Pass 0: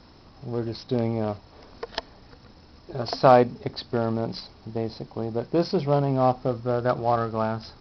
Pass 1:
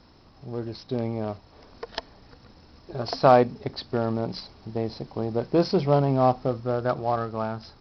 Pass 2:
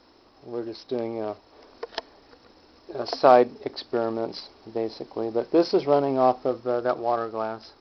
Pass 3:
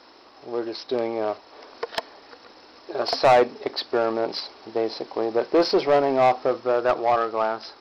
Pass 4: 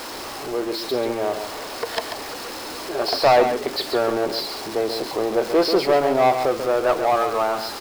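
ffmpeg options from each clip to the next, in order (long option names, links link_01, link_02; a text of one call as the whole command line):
ffmpeg -i in.wav -af "dynaudnorm=framelen=340:gausssize=11:maxgain=11.5dB,volume=-3.5dB" out.wav
ffmpeg -i in.wav -af "lowshelf=frequency=230:width_type=q:width=1.5:gain=-11" out.wav
ffmpeg -i in.wav -filter_complex "[0:a]asplit=2[link_01][link_02];[link_02]highpass=frequency=720:poles=1,volume=20dB,asoftclip=type=tanh:threshold=-3.5dB[link_03];[link_01][link_03]amix=inputs=2:normalize=0,lowpass=frequency=4900:poles=1,volume=-6dB,volume=-4.5dB" out.wav
ffmpeg -i in.wav -af "aeval=exprs='val(0)+0.5*0.0376*sgn(val(0))':channel_layout=same,aecho=1:1:139:0.398" out.wav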